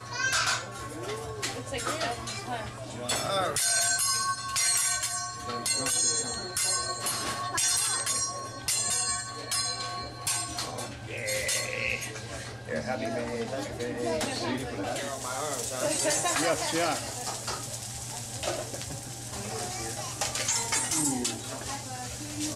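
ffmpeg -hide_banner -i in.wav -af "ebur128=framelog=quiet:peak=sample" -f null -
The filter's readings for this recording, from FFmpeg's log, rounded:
Integrated loudness:
  I:         -29.0 LUFS
  Threshold: -39.0 LUFS
Loudness range:
  LRA:         6.1 LU
  Threshold: -48.8 LUFS
  LRA low:   -32.2 LUFS
  LRA high:  -26.1 LUFS
Sample peak:
  Peak:      -12.9 dBFS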